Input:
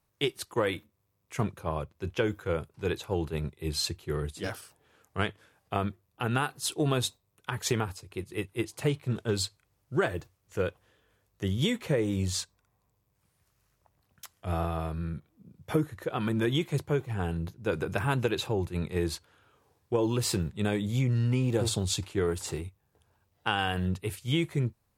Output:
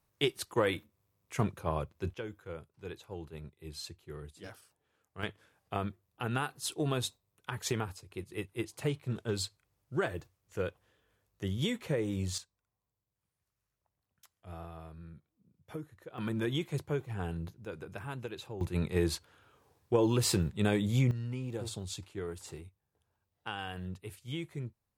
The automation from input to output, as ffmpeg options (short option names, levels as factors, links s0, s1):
-af "asetnsamples=n=441:p=0,asendcmd='2.14 volume volume -13dB;5.23 volume volume -5dB;12.38 volume volume -15dB;16.18 volume volume -5.5dB;17.65 volume volume -13dB;18.61 volume volume 0dB;21.11 volume volume -11dB',volume=0.891"